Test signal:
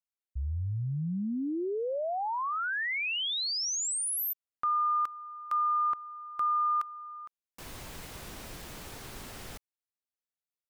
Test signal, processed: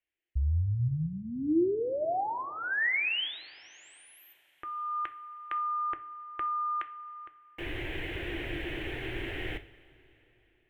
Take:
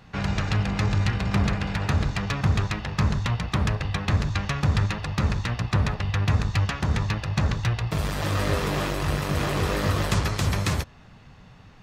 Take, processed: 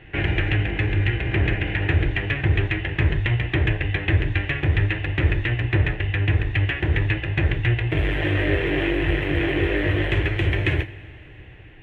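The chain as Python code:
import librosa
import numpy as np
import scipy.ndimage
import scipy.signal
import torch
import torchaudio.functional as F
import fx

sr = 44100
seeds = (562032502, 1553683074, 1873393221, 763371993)

y = fx.curve_eq(x, sr, hz=(130.0, 210.0, 330.0, 470.0, 760.0, 1200.0, 1800.0, 3100.0, 4800.0, 10000.0), db=(0, -15, 9, -1, -5, -14, 6, 2, -28, -24))
y = fx.rider(y, sr, range_db=5, speed_s=0.5)
y = fx.rev_double_slope(y, sr, seeds[0], early_s=0.38, late_s=3.9, knee_db=-18, drr_db=9.0)
y = y * 10.0 ** (3.0 / 20.0)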